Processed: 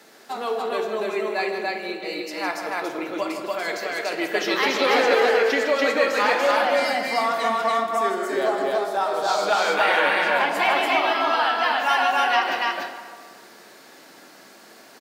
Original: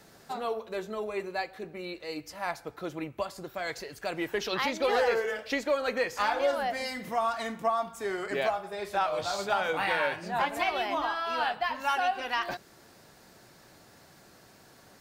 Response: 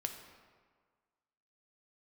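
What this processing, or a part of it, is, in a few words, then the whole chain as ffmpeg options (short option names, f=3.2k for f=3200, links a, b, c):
stadium PA: -filter_complex "[0:a]asettb=1/sr,asplit=3[a][b][c];[a]atrim=end=8.094[d];[b]atrim=start=8.09:end=9.28,asetpts=PTS-STARTPTS,afade=t=in:d=0.004:c=qsin,afade=t=out:st=1.186:d=0.004:c=qsin,equalizer=f=2.4k:t=o:w=0.82:g=-13.5[e];[c]atrim=start=9.276[f];[d][e]acrossfade=d=0.004:c1=hsin:c2=qsin[g];[g][f]acrossfade=d=0.004:c1=qsin:c2=hsin,highpass=f=220:w=0.5412,highpass=f=220:w=1.3066,equalizer=f=2.4k:t=o:w=1.7:g=3,aecho=1:1:157.4|288.6:0.355|0.891[h];[1:a]atrim=start_sample=2205[i];[h][i]afir=irnorm=-1:irlink=0,volume=5.5dB"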